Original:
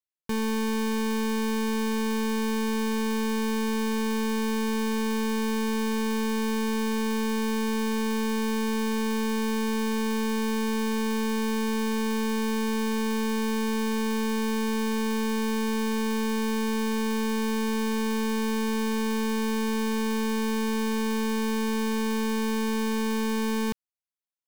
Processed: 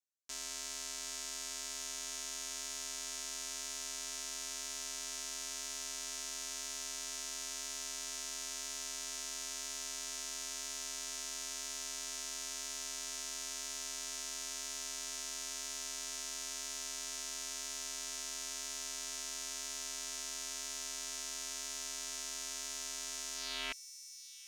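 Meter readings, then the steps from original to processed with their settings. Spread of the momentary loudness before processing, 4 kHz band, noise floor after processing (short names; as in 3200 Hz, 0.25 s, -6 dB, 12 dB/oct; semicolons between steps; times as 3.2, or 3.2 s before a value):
0 LU, -5.0 dB, -44 dBFS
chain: band-pass sweep 6600 Hz -> 1200 Hz, 23.34–24.01; ring modulator 180 Hz; thin delay 0.749 s, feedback 79%, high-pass 5000 Hz, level -11 dB; gain +7 dB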